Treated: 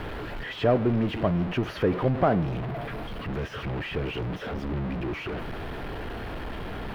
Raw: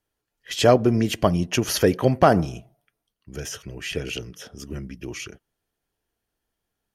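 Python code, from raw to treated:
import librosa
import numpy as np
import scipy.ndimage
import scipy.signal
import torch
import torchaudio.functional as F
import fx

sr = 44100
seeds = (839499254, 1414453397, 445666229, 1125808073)

y = x + 0.5 * 10.0 ** (-17.5 / 20.0) * np.sign(x)
y = fx.air_absorb(y, sr, metres=460.0)
y = F.gain(torch.from_numpy(y), -7.0).numpy()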